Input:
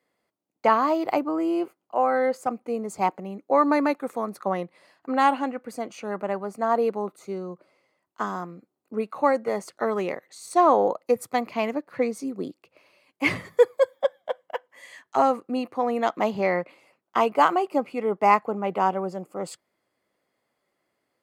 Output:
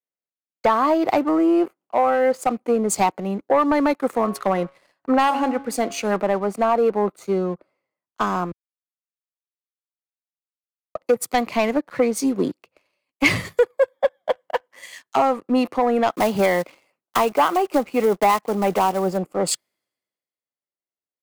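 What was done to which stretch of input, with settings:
4.07–6.16 s: de-hum 138.2 Hz, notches 11
8.52–10.95 s: mute
16.11–19.18 s: block-companded coder 5-bit
whole clip: compression 5:1, threshold -27 dBFS; waveshaping leveller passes 2; three bands expanded up and down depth 70%; trim +5.5 dB

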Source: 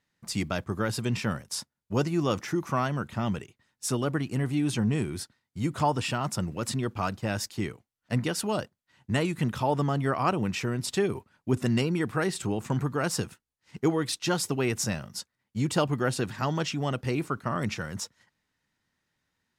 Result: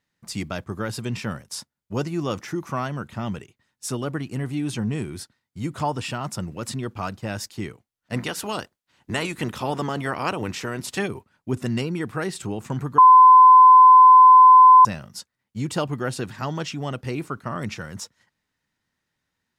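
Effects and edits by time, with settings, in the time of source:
8.13–11.07 s: spectral peaks clipped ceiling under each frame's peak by 13 dB
12.98–14.85 s: bleep 1.02 kHz -6.5 dBFS

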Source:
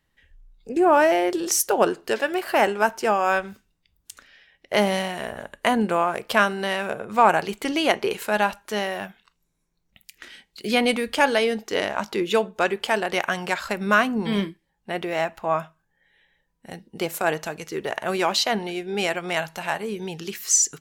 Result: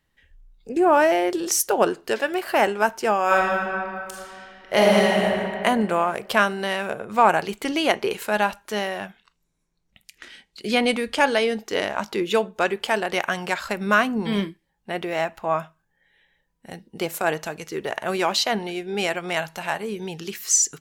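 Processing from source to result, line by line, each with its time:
3.25–5.22 s: reverb throw, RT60 2.5 s, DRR -4 dB
8.89–11.54 s: low-pass 11 kHz

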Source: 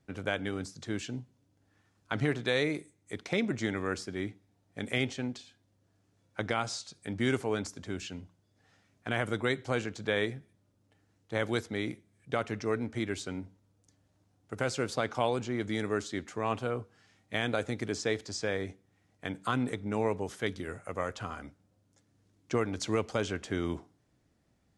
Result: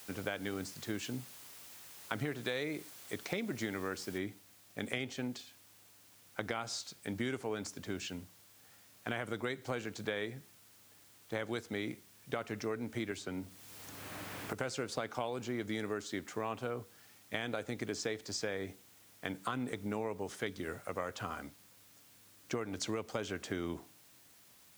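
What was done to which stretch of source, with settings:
4.18 s: noise floor step -53 dB -62 dB
13.11–14.53 s: three bands compressed up and down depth 100%
whole clip: high-pass 130 Hz 6 dB/octave; compression, threshold -33 dBFS

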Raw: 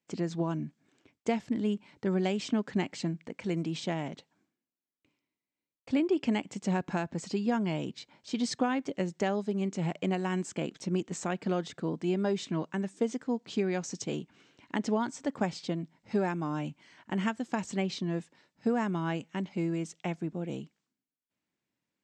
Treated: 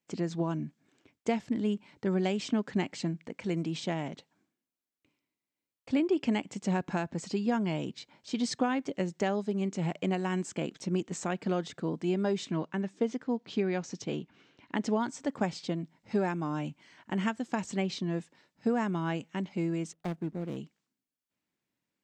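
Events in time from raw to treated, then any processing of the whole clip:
12.57–14.78 s: low-pass 4.9 kHz
19.93–20.57 s: median filter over 41 samples

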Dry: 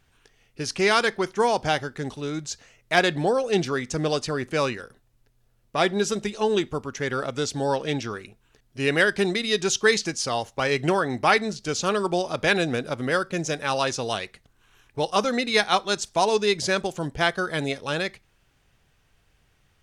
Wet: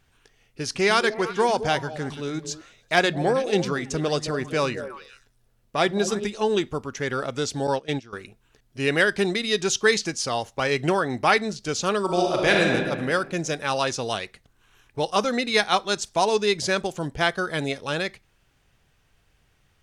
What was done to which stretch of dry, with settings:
0.64–6.25 s: repeats whose band climbs or falls 108 ms, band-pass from 180 Hz, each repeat 1.4 oct, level -6 dB
7.67–8.13 s: gate -28 dBFS, range -16 dB
12.04–12.72 s: reverb throw, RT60 1.6 s, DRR -0.5 dB

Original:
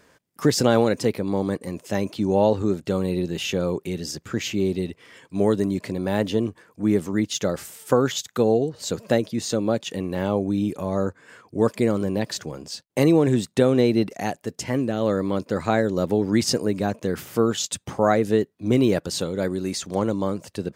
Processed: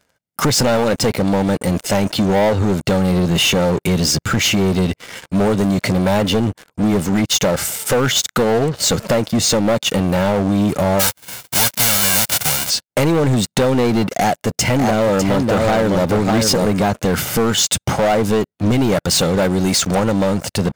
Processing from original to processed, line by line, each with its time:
10.99–12.69 s: formants flattened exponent 0.1
14.16–16.66 s: delay 601 ms -5 dB
whole clip: comb 1.4 ms, depth 41%; compression 3:1, threshold -26 dBFS; waveshaping leveller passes 5

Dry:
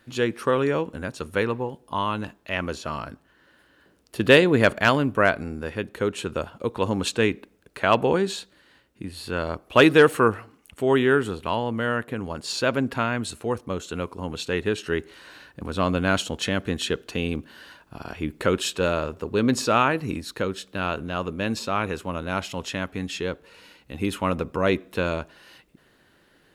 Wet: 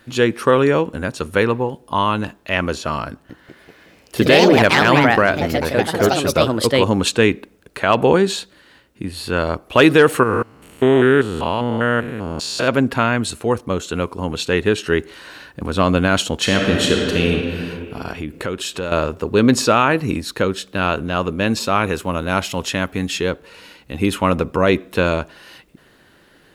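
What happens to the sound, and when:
3.10–7.32 s: ever faster or slower copies 193 ms, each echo +3 st, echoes 3
10.23–12.68 s: spectrogram pixelated in time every 200 ms
16.39–17.32 s: reverb throw, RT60 2.4 s, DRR 0 dB
18.12–18.92 s: compression 2.5:1, threshold -33 dBFS
21.60–23.31 s: treble shelf 11 kHz +8.5 dB
whole clip: loudness maximiser +9 dB; trim -1 dB

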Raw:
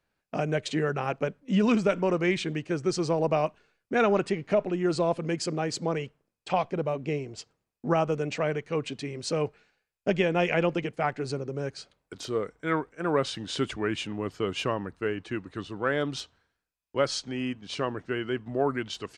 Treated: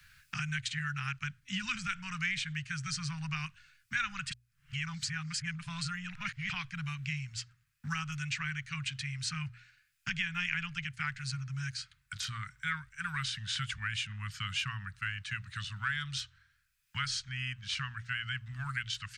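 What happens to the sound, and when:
4.31–6.49 s: reverse
whole clip: elliptic band-stop 130–1500 Hz, stop band 60 dB; hum notches 60/120 Hz; three bands compressed up and down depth 70%; trim +1 dB

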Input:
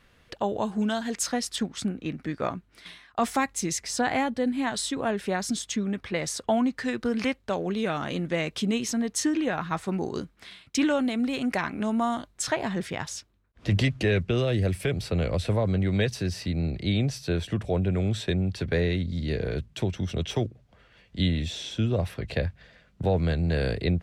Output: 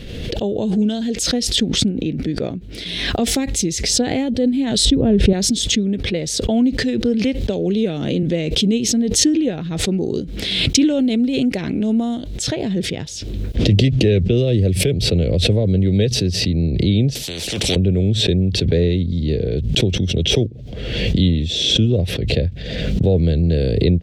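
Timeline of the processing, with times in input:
4.85–5.33 s: RIAA curve playback
7.41–8.23 s: three bands compressed up and down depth 70%
17.15–17.76 s: spectrum-flattening compressor 10:1
whole clip: FFT filter 470 Hz 0 dB, 1.1 kHz -24 dB, 3.4 kHz -3 dB, 10 kHz -12 dB; swell ahead of each attack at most 34 dB/s; trim +9 dB

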